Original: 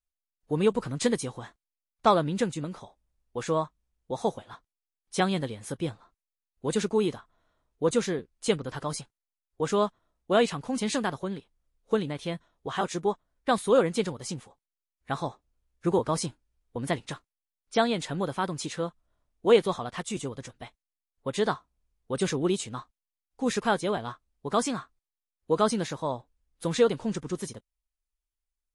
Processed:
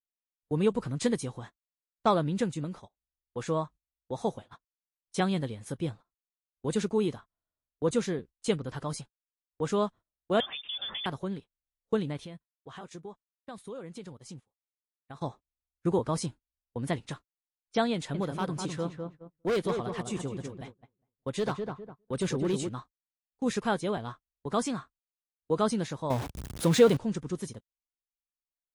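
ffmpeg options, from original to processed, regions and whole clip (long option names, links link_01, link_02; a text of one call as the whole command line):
ffmpeg -i in.wav -filter_complex "[0:a]asettb=1/sr,asplit=3[link_01][link_02][link_03];[link_01]atrim=end=10.404[link_04];[link_02]atrim=start=10.4:end=11.06,asetpts=PTS-STARTPTS,afade=type=in:duration=0.004:curve=qsin,afade=type=out:start_time=0.656:duration=0.004:curve=qsin,acompressor=threshold=-27dB:ratio=5:attack=3.2:release=140:knee=1:detection=peak,lowpass=frequency=3100:width_type=q:width=0.5098,lowpass=frequency=3100:width_type=q:width=0.6013,lowpass=frequency=3100:width_type=q:width=0.9,lowpass=frequency=3100:width_type=q:width=2.563,afreqshift=-3700[link_05];[link_03]atrim=start=11.056[link_06];[link_04][link_05]acrossfade=duration=0.004:curve1=hsin:curve2=qsin[link_07];[link_07][link_06]acrossfade=duration=0.004:curve1=qsin:curve2=hsin,asettb=1/sr,asplit=3[link_08][link_09][link_10];[link_08]atrim=end=12.254[link_11];[link_09]atrim=start=12.25:end=15.21,asetpts=PTS-STARTPTS,afade=type=in:duration=0.004:curve=qsin,afade=type=out:start_time=2.956:duration=0.004:curve=qsin,agate=range=-33dB:threshold=-49dB:ratio=3:release=100:detection=peak,acompressor=threshold=-41dB:ratio=3:attack=3.2:release=140:knee=1:detection=peak[link_12];[link_10]atrim=start=15.206[link_13];[link_11][link_12]acrossfade=duration=0.004:curve1=hsin:curve2=qsin[link_14];[link_14][link_13]acrossfade=duration=0.004:curve1=qsin:curve2=hsin,asettb=1/sr,asplit=3[link_15][link_16][link_17];[link_15]atrim=end=17.944[link_18];[link_16]atrim=start=17.94:end=22.69,asetpts=PTS-STARTPTS,afade=type=in:duration=0.004:curve=qsin,afade=type=out:start_time=4.746:duration=0.004:curve=qsin,asoftclip=type=hard:threshold=-21.5dB,asplit=2[link_19][link_20];[link_20]adelay=203,lowpass=frequency=1300:poles=1,volume=-4.5dB,asplit=2[link_21][link_22];[link_22]adelay=203,lowpass=frequency=1300:poles=1,volume=0.35,asplit=2[link_23][link_24];[link_24]adelay=203,lowpass=frequency=1300:poles=1,volume=0.35,asplit=2[link_25][link_26];[link_26]adelay=203,lowpass=frequency=1300:poles=1,volume=0.35[link_27];[link_19][link_21][link_23][link_25][link_27]amix=inputs=5:normalize=0,atrim=end_sample=209475[link_28];[link_17]atrim=start=22.686[link_29];[link_18][link_28]acrossfade=duration=0.004:curve1=hsin:curve2=qsin[link_30];[link_30][link_29]acrossfade=duration=0.004:curve1=qsin:curve2=hsin,asettb=1/sr,asplit=3[link_31][link_32][link_33];[link_31]atrim=end=26.104[link_34];[link_32]atrim=start=26.1:end=26.97,asetpts=PTS-STARTPTS,afade=type=in:duration=0.004:curve=qsin,afade=type=out:start_time=0.866:duration=0.004:curve=qsin,aeval=exprs='val(0)+0.5*0.0237*sgn(val(0))':channel_layout=same,highpass=64,acontrast=21[link_35];[link_33]atrim=start=26.966[link_36];[link_34][link_35]acrossfade=duration=0.004:curve1=hsin:curve2=qsin[link_37];[link_37][link_36]acrossfade=duration=0.004:curve1=qsin:curve2=hsin,agate=range=-21dB:threshold=-43dB:ratio=16:detection=peak,equalizer=frequency=96:width=0.37:gain=5.5,volume=-4.5dB" out.wav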